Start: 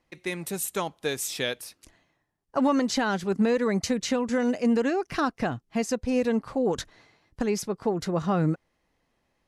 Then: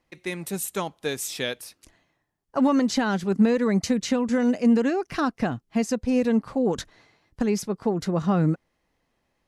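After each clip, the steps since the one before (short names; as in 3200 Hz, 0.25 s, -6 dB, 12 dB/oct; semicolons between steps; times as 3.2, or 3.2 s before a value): dynamic EQ 210 Hz, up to +5 dB, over -36 dBFS, Q 1.4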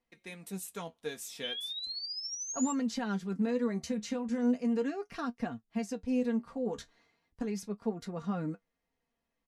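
comb 4.3 ms, depth 52%; painted sound rise, 1.43–2.73, 3000–7500 Hz -26 dBFS; flange 0.37 Hz, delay 8 ms, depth 6.3 ms, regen +49%; gain -9 dB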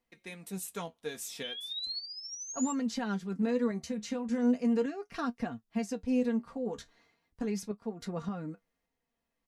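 random-step tremolo 3.5 Hz; gain +2.5 dB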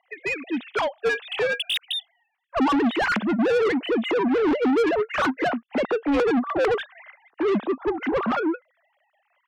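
sine-wave speech; overdrive pedal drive 33 dB, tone 2700 Hz, clips at -14.5 dBFS; gain +1 dB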